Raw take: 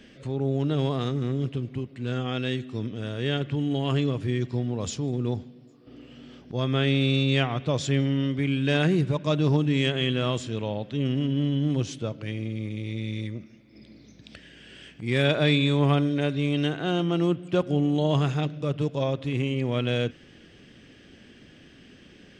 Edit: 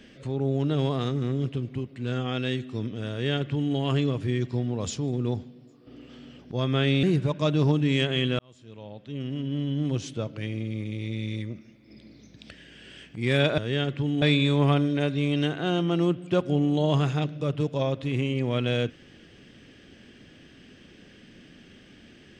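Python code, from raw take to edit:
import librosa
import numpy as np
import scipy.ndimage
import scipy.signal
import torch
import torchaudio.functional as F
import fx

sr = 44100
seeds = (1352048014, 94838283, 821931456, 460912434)

y = fx.edit(x, sr, fx.duplicate(start_s=3.11, length_s=0.64, to_s=15.43),
    fx.reverse_span(start_s=6.09, length_s=0.3),
    fx.cut(start_s=7.03, length_s=1.85),
    fx.fade_in_span(start_s=10.24, length_s=1.87), tone=tone)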